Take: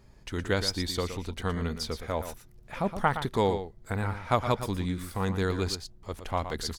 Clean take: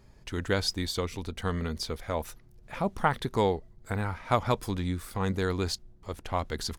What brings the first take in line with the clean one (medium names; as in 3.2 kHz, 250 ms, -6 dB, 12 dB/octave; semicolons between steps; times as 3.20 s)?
inverse comb 117 ms -10 dB